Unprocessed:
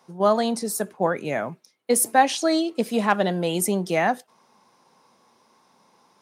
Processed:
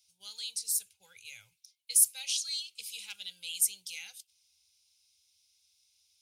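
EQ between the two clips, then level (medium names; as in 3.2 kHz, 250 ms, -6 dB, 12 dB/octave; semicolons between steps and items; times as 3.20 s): inverse Chebyshev band-stop 140–1200 Hz, stop band 40 dB; static phaser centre 750 Hz, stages 4; band-stop 960 Hz, Q 23; 0.0 dB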